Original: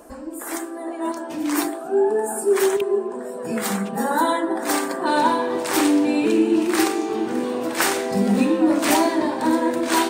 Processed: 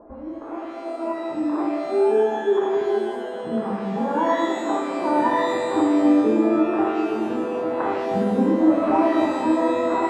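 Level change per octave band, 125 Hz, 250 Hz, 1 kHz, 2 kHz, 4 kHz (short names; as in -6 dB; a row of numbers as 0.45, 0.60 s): -1.5, 0.0, -0.5, -6.0, -10.0 dB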